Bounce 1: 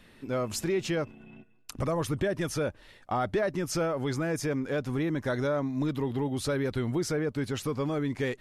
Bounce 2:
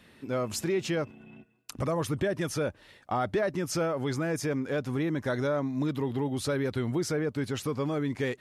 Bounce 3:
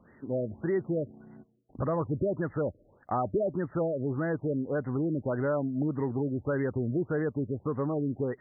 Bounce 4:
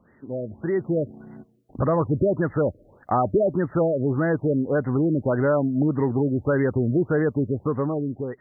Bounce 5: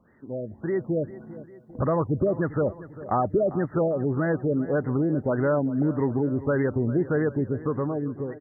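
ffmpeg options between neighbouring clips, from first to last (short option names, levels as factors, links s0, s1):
-af "highpass=64"
-af "afftfilt=real='re*lt(b*sr/1024,630*pow(2100/630,0.5+0.5*sin(2*PI*1.7*pts/sr)))':imag='im*lt(b*sr/1024,630*pow(2100/630,0.5+0.5*sin(2*PI*1.7*pts/sr)))':win_size=1024:overlap=0.75"
-af "dynaudnorm=f=140:g=11:m=2.51"
-af "aecho=1:1:398|796|1194|1592|1990:0.15|0.0823|0.0453|0.0249|0.0137,volume=0.75"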